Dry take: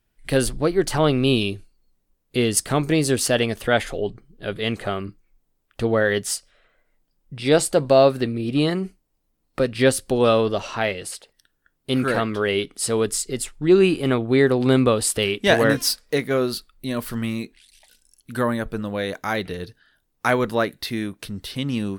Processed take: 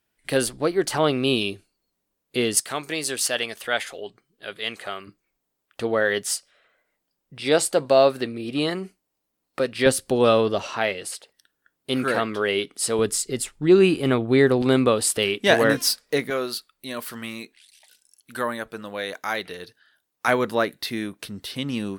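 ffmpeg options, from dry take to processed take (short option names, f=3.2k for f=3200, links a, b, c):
-af "asetnsamples=n=441:p=0,asendcmd='2.6 highpass f 1300;5.07 highpass f 410;9.86 highpass f 120;10.67 highpass f 280;12.99 highpass f 70;14.62 highpass f 200;16.3 highpass f 700;20.28 highpass f 220',highpass=f=310:p=1"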